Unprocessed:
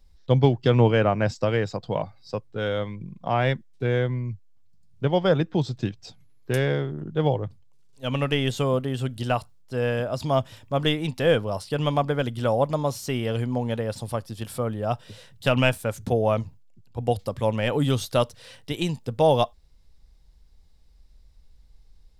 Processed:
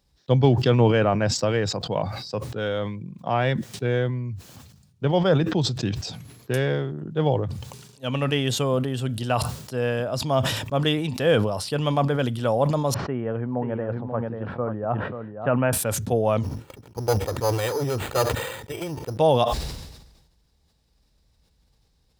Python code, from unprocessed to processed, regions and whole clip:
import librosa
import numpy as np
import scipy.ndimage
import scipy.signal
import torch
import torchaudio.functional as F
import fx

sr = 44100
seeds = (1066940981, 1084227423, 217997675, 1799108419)

y = fx.chain(x, sr, fx.lowpass(hz=1700.0, slope=24),
    fx.low_shelf(hz=69.0, db=-10.5),
    fx.echo_single(ms=536, db=-8.0), at=(12.94, 15.73))
y = fx.chain(y, sr, fx.lower_of_two(delay_ms=2.2),
    fx.resample_bad(factor=8, down='filtered', up='hold'), at=(16.43, 19.17))
y = scipy.signal.sosfilt(scipy.signal.butter(2, 83.0, 'highpass', fs=sr, output='sos'), y)
y = fx.notch(y, sr, hz=2100.0, q=19.0)
y = fx.sustainer(y, sr, db_per_s=50.0)